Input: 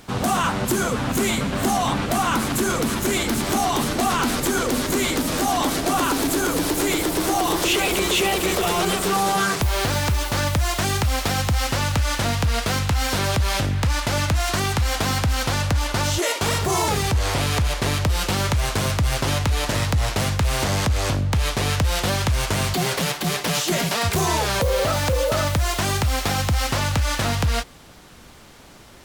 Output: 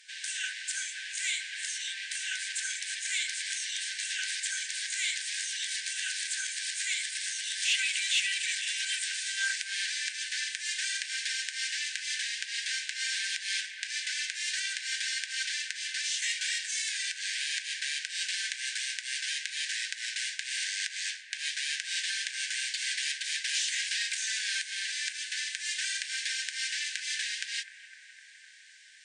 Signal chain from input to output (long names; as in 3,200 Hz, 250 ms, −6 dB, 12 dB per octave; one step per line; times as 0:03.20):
brick-wall band-pass 1,500–9,600 Hz
harmonic generator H 5 −37 dB, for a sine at −10 dBFS
bucket-brigade delay 254 ms, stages 4,096, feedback 80%, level −15 dB
level −5.5 dB